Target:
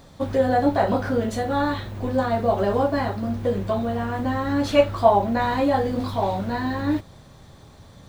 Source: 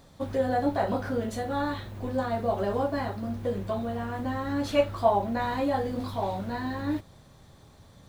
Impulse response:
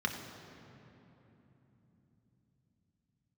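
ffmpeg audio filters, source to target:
-af "equalizer=frequency=12000:width_type=o:width=0.88:gain=-4,volume=6.5dB"

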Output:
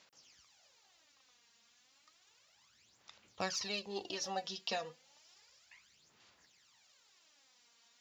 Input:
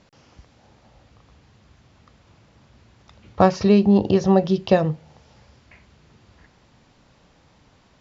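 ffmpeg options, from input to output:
ffmpeg -i in.wav -af "aderivative,aphaser=in_gain=1:out_gain=1:delay=4.3:decay=0.64:speed=0.32:type=sinusoidal,volume=-1dB" out.wav

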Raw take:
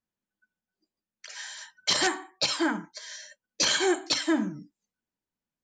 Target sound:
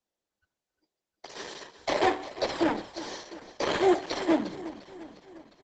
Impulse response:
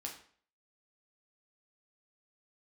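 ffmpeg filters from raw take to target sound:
-filter_complex "[0:a]equalizer=frequency=2600:width=5.9:gain=-6.5,asettb=1/sr,asplit=3[link_01][link_02][link_03];[link_01]atrim=end=1.784[link_04];[link_02]atrim=start=1.78:end=3.01,asetpts=PTS-STARTPTS,afade=type=in:duration=0.004:curve=qsin,afade=type=out:start_time=1.226:duration=0.004:curve=qsin,aeval=exprs='val(0)+0.00158*(sin(2*PI*60*n/s)+sin(2*PI*2*60*n/s)/2+sin(2*PI*3*60*n/s)/3+sin(2*PI*4*60*n/s)/4+sin(2*PI*5*60*n/s)/5)':channel_layout=same[link_05];[link_03]atrim=start=3.006[link_06];[link_04][link_05]acrossfade=duration=0.004:curve1=hsin:curve2=qsin[link_07];[link_07][link_06]acrossfade=duration=0.004:curve1=qsin:curve2=hsin,acrossover=split=170|930|3400[link_08][link_09][link_10][link_11];[link_10]acrusher=samples=31:mix=1:aa=0.000001[link_12];[link_11]acompressor=threshold=-37dB:ratio=8[link_13];[link_08][link_09][link_12][link_13]amix=inputs=4:normalize=0,acrossover=split=380 4000:gain=0.112 1 0.1[link_14][link_15][link_16];[link_14][link_15][link_16]amix=inputs=3:normalize=0,aecho=1:1:353|706|1059|1412|1765|2118:0.178|0.101|0.0578|0.0329|0.0188|0.0107,volume=8.5dB" -ar 48000 -c:a libopus -b:a 10k

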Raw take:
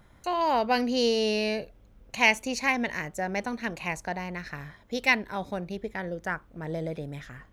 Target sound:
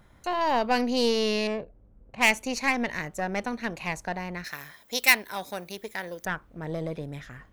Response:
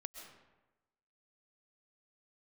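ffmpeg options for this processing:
-filter_complex "[0:a]asettb=1/sr,asplit=3[link_01][link_02][link_03];[link_01]atrim=end=1.474[link_04];[link_02]atrim=start=1.47:end=2.3,asetpts=PTS-STARTPTS,afade=type=in:duration=0.004:curve=qsin,afade=type=out:start_time=0.826:duration=0.004:curve=qsin,adynamicsmooth=sensitivity=1.5:basefreq=1000[link_05];[link_03]atrim=start=2.296[link_06];[link_04][link_05]acrossfade=duration=0.004:curve1=hsin:curve2=qsin[link_07];[link_07][link_06]acrossfade=duration=0.004:curve1=qsin:curve2=hsin,aeval=exprs='0.422*(cos(1*acos(clip(val(0)/0.422,-1,1)))-cos(1*PI/2))+0.0237*(cos(8*acos(clip(val(0)/0.422,-1,1)))-cos(8*PI/2))':channel_layout=same,asettb=1/sr,asplit=3[link_08][link_09][link_10];[link_08]atrim=end=4.444[link_11];[link_09]atrim=start=4.44:end=6.25,asetpts=PTS-STARTPTS,afade=type=in:duration=0.004:curve=qsin,afade=type=out:start_time=1.806:duration=0.004:curve=qsin,aemphasis=mode=production:type=riaa[link_12];[link_10]atrim=start=6.246[link_13];[link_11][link_12]acrossfade=duration=0.004:curve1=hsin:curve2=qsin[link_14];[link_14][link_13]acrossfade=duration=0.004:curve1=qsin:curve2=hsin"

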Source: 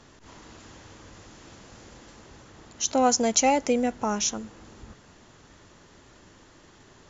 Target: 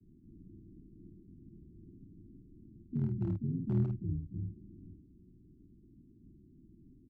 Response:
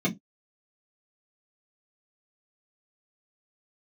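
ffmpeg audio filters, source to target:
-filter_complex "[0:a]acrossover=split=270[link_01][link_02];[link_02]acompressor=threshold=-32dB:ratio=16[link_03];[link_01][link_03]amix=inputs=2:normalize=0,asplit=3[link_04][link_05][link_06];[link_05]asetrate=37084,aresample=44100,atempo=1.18921,volume=-12dB[link_07];[link_06]asetrate=58866,aresample=44100,atempo=0.749154,volume=-4dB[link_08];[link_04][link_07][link_08]amix=inputs=3:normalize=0,asuperpass=centerf=250:order=20:qfactor=0.72,volume=22dB,asoftclip=hard,volume=-22dB,asplit=2[link_09][link_10];[link_10]aecho=0:1:37|50:0.211|0.562[link_11];[link_09][link_11]amix=inputs=2:normalize=0,afreqshift=-120,volume=-4dB"

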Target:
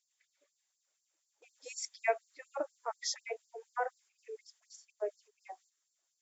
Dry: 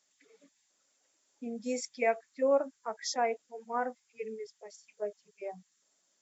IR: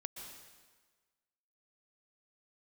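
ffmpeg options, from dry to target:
-af "agate=range=-8dB:threshold=-58dB:ratio=16:detection=peak,afftfilt=real='re*gte(b*sr/1024,280*pow(4200/280,0.5+0.5*sin(2*PI*4.1*pts/sr)))':imag='im*gte(b*sr/1024,280*pow(4200/280,0.5+0.5*sin(2*PI*4.1*pts/sr)))':win_size=1024:overlap=0.75"

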